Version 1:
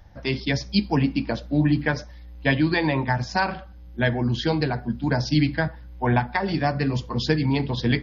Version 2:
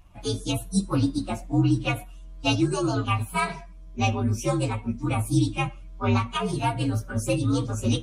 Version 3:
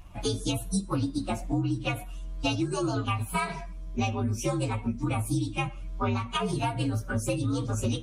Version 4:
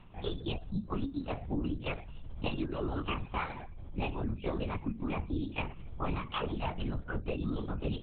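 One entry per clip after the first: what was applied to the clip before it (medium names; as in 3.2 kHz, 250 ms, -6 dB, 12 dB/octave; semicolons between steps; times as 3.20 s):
frequency axis rescaled in octaves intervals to 123%; time-frequency box 2.67–2.95 s, 1.8–4.1 kHz -13 dB
compression 6:1, threshold -31 dBFS, peak gain reduction 14.5 dB; trim +5.5 dB
LPC vocoder at 8 kHz whisper; trim -6 dB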